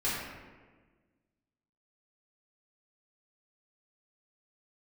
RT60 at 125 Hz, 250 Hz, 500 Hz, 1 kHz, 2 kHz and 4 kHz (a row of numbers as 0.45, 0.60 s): 1.7, 1.8, 1.6, 1.3, 1.2, 0.85 s